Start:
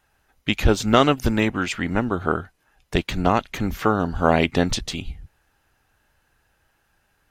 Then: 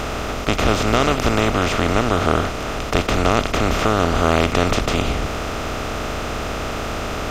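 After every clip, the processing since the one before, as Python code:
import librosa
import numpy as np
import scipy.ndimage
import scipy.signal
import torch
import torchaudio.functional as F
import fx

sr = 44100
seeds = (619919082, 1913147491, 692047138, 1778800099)

y = fx.bin_compress(x, sr, power=0.2)
y = y * 10.0 ** (-6.0 / 20.0)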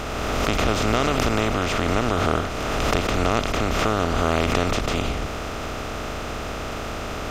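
y = fx.pre_swell(x, sr, db_per_s=21.0)
y = y * 10.0 ** (-5.0 / 20.0)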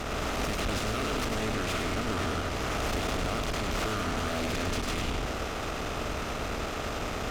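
y = fx.tube_stage(x, sr, drive_db=29.0, bias=0.65)
y = y + 10.0 ** (-5.0 / 20.0) * np.pad(y, (int(102 * sr / 1000.0), 0))[:len(y)]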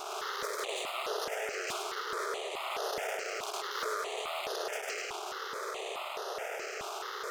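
y = fx.brickwall_highpass(x, sr, low_hz=360.0)
y = fx.phaser_held(y, sr, hz=4.7, low_hz=510.0, high_hz=7800.0)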